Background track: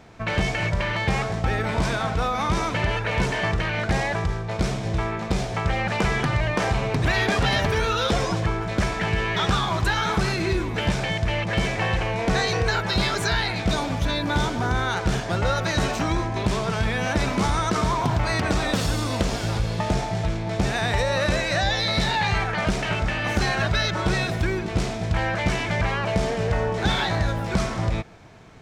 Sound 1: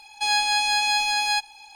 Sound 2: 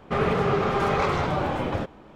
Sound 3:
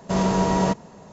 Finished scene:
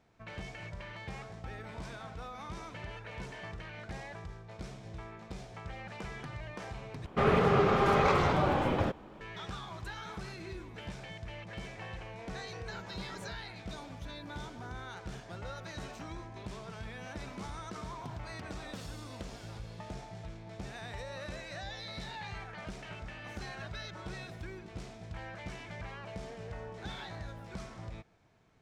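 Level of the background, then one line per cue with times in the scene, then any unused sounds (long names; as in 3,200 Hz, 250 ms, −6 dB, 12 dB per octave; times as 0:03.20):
background track −20 dB
0:07.06: overwrite with 2 −2.5 dB
0:12.59: mix in 3 −9 dB + noise reduction from a noise print of the clip's start 20 dB
not used: 1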